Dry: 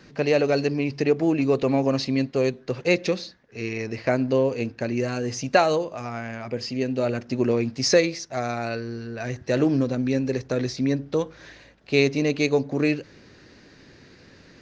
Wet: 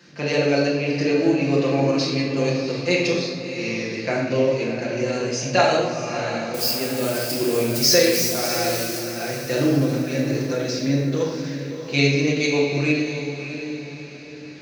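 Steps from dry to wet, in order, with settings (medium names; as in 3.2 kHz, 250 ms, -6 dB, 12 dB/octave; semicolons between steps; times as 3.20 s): 6.54–8.99 s: zero-crossing glitches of -22.5 dBFS; high-pass 120 Hz; treble shelf 2.1 kHz +8.5 dB; echo that smears into a reverb 649 ms, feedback 41%, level -9 dB; reverberation RT60 1.2 s, pre-delay 6 ms, DRR -5 dB; endings held to a fixed fall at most 140 dB/s; trim -6.5 dB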